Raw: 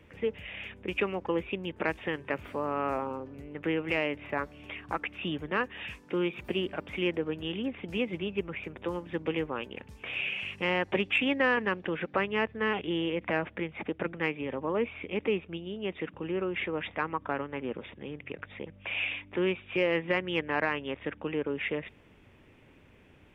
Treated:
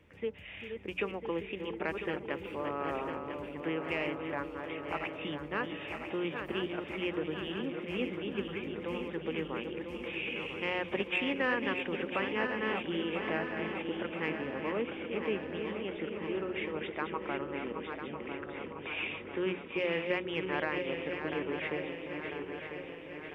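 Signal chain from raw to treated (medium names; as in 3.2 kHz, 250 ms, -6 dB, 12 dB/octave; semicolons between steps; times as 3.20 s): backward echo that repeats 499 ms, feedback 76%, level -6.5 dB; hum notches 60/120/180 Hz; repeats whose band climbs or falls 392 ms, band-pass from 260 Hz, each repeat 0.7 oct, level -6.5 dB; trim -5.5 dB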